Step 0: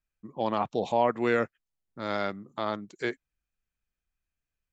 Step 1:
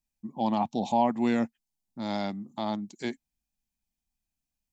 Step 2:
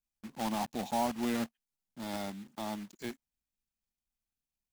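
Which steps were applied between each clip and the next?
drawn EQ curve 140 Hz 0 dB, 230 Hz +10 dB, 460 Hz −8 dB, 840 Hz +6 dB, 1,300 Hz −11 dB, 2,000 Hz −4 dB, 5,400 Hz +6 dB; level −1.5 dB
one scale factor per block 3 bits; level −7.5 dB

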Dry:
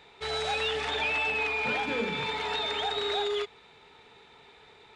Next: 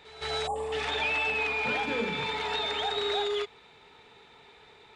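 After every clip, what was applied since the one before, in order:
time-frequency box erased 0:00.47–0:00.72, 1,200–7,000 Hz
echo ahead of the sound 166 ms −16.5 dB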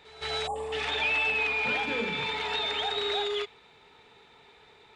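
dynamic equaliser 2,800 Hz, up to +4 dB, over −44 dBFS, Q 1.1
level −1.5 dB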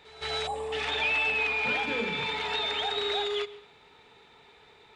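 convolution reverb RT60 0.85 s, pre-delay 109 ms, DRR 18.5 dB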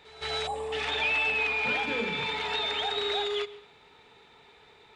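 no processing that can be heard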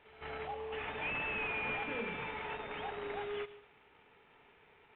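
variable-slope delta modulation 16 kbit/s
level −7.5 dB

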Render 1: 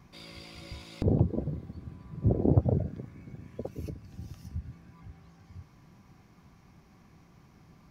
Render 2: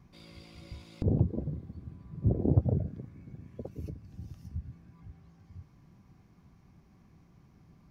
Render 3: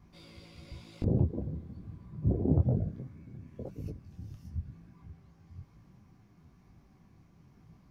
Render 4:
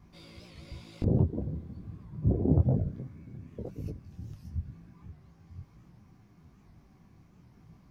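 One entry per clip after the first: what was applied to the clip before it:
low-shelf EQ 400 Hz +7.5 dB; level −8 dB
micro pitch shift up and down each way 36 cents; level +3.5 dB
wow of a warped record 78 rpm, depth 160 cents; level +2 dB

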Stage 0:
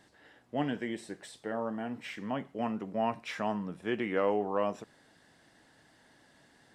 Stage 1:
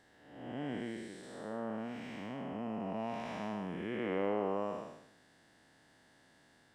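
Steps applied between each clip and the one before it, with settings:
spectrum smeared in time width 358 ms
level −1.5 dB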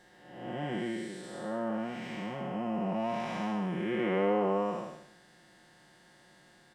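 comb filter 5.6 ms, depth 87%
level +3.5 dB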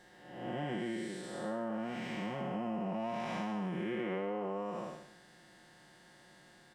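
downward compressor 12 to 1, threshold −33 dBFS, peak gain reduction 10 dB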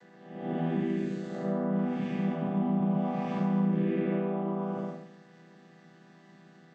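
channel vocoder with a chord as carrier minor triad, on E3
level +9 dB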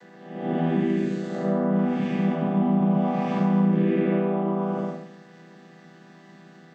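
high-pass filter 120 Hz
level +7 dB

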